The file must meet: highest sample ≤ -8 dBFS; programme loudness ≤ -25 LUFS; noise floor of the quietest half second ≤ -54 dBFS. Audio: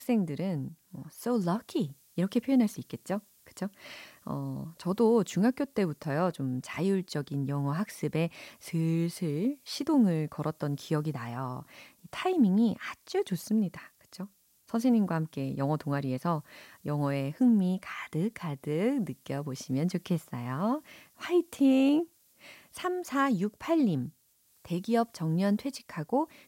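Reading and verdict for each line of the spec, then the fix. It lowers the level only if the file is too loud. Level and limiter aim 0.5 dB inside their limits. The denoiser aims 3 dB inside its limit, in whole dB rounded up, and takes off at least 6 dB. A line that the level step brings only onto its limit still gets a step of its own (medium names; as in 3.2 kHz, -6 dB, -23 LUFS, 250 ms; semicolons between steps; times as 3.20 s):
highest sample -14.5 dBFS: pass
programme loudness -30.5 LUFS: pass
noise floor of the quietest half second -67 dBFS: pass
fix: none needed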